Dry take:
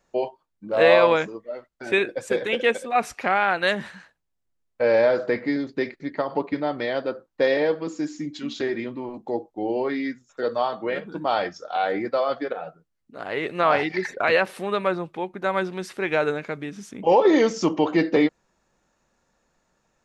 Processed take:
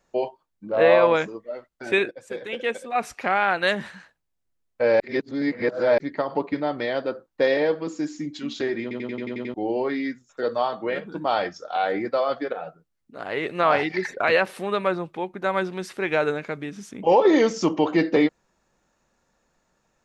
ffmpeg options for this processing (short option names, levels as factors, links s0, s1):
-filter_complex "[0:a]asplit=3[s0][s1][s2];[s0]afade=t=out:st=0.7:d=0.02[s3];[s1]lowpass=f=1900:p=1,afade=t=in:st=0.7:d=0.02,afade=t=out:st=1.13:d=0.02[s4];[s2]afade=t=in:st=1.13:d=0.02[s5];[s3][s4][s5]amix=inputs=3:normalize=0,asplit=12[s6][s7][s8][s9][s10][s11][s12][s13][s14][s15][s16][s17];[s6]atrim=end=2.11,asetpts=PTS-STARTPTS,afade=t=out:st=2.106:d=0.004:c=hsin:silence=0.211349[s18];[s7]atrim=start=2.11:end=5.002,asetpts=PTS-STARTPTS,afade=t=in:d=1.36:silence=0.211349[s19];[s8]atrim=start=4.998:end=5.982,asetpts=PTS-STARTPTS,areverse[s20];[s9]atrim=start=5.978:end=8.912[s21];[s10]atrim=start=8.818:end=8.912[s22];[s11]atrim=start=8.818:end=8.912[s23];[s12]atrim=start=8.818:end=8.912[s24];[s13]atrim=start=8.818:end=8.912[s25];[s14]atrim=start=8.818:end=8.912[s26];[s15]atrim=start=8.818:end=8.912[s27];[s16]atrim=start=8.818:end=8.912[s28];[s17]atrim=start=9.538[s29];[s18][s19]concat=n=2:v=0:a=1[s30];[s30][s20]acrossfade=d=0.004:c1=hsin:c2=hsin[s31];[s31][s21]acrossfade=d=0.004:c1=hsin:c2=hsin[s32];[s32][s22]acrossfade=d=0.004:c1=hsin:c2=hsin[s33];[s33][s23]acrossfade=d=0.004:c1=hsin:c2=hsin[s34];[s34][s24]acrossfade=d=0.004:c1=hsin:c2=hsin[s35];[s35][s25]acrossfade=d=0.004:c1=hsin:c2=hsin[s36];[s36][s26]acrossfade=d=0.004:c1=hsin:c2=hsin[s37];[s37][s27]acrossfade=d=0.004:c1=hsin:c2=hsin[s38];[s38][s28]acrossfade=d=0.004:c1=hsin:c2=hsin[s39];[s39][s29]acrossfade=d=0.004:c1=hsin:c2=hsin"